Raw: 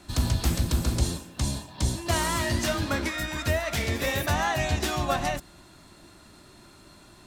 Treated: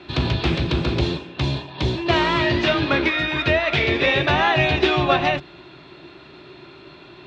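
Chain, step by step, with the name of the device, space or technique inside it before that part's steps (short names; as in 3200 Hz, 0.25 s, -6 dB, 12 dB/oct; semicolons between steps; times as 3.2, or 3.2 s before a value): guitar cabinet (speaker cabinet 90–3800 Hz, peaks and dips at 99 Hz -9 dB, 140 Hz +6 dB, 210 Hz -9 dB, 380 Hz +9 dB, 2500 Hz +7 dB, 3600 Hz +5 dB); 2.04–2.66 Chebyshev low-pass 8200 Hz, order 5; gain +7.5 dB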